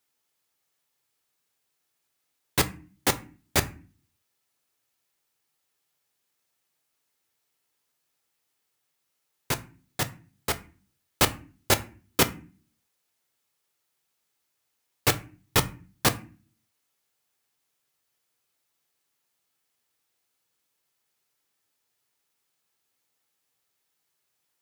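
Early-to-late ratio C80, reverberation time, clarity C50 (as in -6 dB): 22.5 dB, 0.40 s, 18.0 dB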